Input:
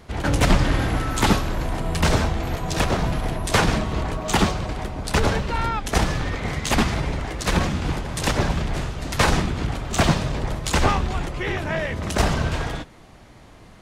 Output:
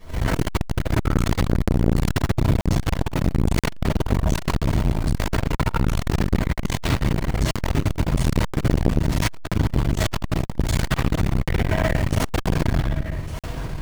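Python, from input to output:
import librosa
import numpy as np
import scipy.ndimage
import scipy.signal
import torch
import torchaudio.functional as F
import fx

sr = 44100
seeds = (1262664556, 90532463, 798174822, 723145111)

p1 = fx.low_shelf(x, sr, hz=170.0, db=6.0)
p2 = fx.rider(p1, sr, range_db=10, speed_s=2.0)
p3 = p1 + (p2 * librosa.db_to_amplitude(0.5))
p4 = fx.quant_float(p3, sr, bits=2)
p5 = 10.0 ** (-11.0 / 20.0) * (np.abs((p4 / 10.0 ** (-11.0 / 20.0) + 3.0) % 4.0 - 2.0) - 1.0)
p6 = p5 + fx.echo_single(p5, sr, ms=1166, db=-14.5, dry=0)
p7 = fx.room_shoebox(p6, sr, seeds[0], volume_m3=330.0, walls='mixed', distance_m=5.7)
p8 = fx.buffer_crackle(p7, sr, first_s=0.65, period_s=0.98, block=2048, kind='zero')
p9 = fx.transformer_sat(p8, sr, knee_hz=360.0)
y = p9 * librosa.db_to_amplitude(-15.5)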